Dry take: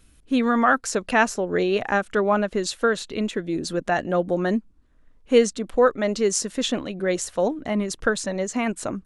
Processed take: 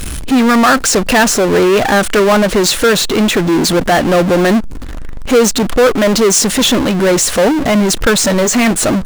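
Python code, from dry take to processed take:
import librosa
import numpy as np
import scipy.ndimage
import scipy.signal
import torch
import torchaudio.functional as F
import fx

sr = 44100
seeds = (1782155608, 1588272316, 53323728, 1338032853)

y = fx.doubler(x, sr, ms=17.0, db=-11, at=(8.18, 8.71))
y = fx.power_curve(y, sr, exponent=0.35)
y = y * 10.0 ** (2.0 / 20.0)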